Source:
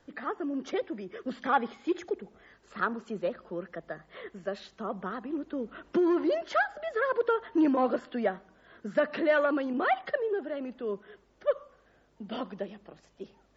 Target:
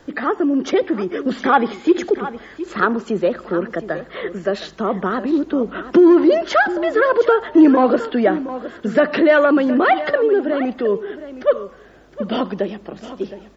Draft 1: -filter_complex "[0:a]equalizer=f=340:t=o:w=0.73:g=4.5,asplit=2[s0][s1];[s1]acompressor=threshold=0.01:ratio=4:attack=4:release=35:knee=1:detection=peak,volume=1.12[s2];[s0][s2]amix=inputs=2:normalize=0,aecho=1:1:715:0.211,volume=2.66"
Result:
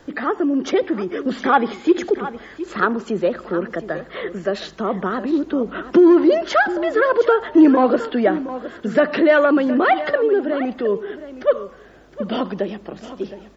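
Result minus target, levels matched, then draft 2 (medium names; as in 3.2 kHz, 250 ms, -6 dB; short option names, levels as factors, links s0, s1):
compression: peak gain reduction +5 dB
-filter_complex "[0:a]equalizer=f=340:t=o:w=0.73:g=4.5,asplit=2[s0][s1];[s1]acompressor=threshold=0.0211:ratio=4:attack=4:release=35:knee=1:detection=peak,volume=1.12[s2];[s0][s2]amix=inputs=2:normalize=0,aecho=1:1:715:0.211,volume=2.66"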